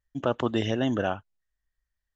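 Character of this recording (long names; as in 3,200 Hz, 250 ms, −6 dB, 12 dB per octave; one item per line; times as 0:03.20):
background noise floor −86 dBFS
spectral slope −5.0 dB per octave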